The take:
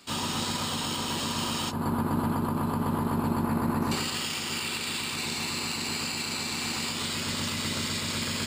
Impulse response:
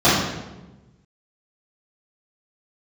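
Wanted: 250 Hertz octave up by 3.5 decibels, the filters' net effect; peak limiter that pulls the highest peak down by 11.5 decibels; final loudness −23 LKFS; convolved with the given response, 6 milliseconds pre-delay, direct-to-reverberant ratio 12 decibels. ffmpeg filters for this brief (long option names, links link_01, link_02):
-filter_complex "[0:a]equalizer=frequency=250:width_type=o:gain=4,alimiter=level_in=2dB:limit=-24dB:level=0:latency=1,volume=-2dB,asplit=2[link_01][link_02];[1:a]atrim=start_sample=2205,adelay=6[link_03];[link_02][link_03]afir=irnorm=-1:irlink=0,volume=-37dB[link_04];[link_01][link_04]amix=inputs=2:normalize=0,volume=11dB"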